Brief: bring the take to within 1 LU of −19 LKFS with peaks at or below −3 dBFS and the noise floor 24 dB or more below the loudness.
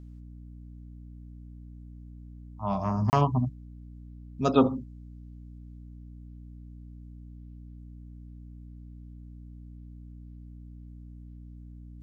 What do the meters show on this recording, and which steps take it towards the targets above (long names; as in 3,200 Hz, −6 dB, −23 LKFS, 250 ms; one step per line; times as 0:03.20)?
number of dropouts 1; longest dropout 29 ms; mains hum 60 Hz; hum harmonics up to 300 Hz; level of the hum −42 dBFS; integrated loudness −27.0 LKFS; sample peak −6.5 dBFS; target loudness −19.0 LKFS
→ repair the gap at 0:03.10, 29 ms
hum removal 60 Hz, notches 5
level +8 dB
brickwall limiter −3 dBFS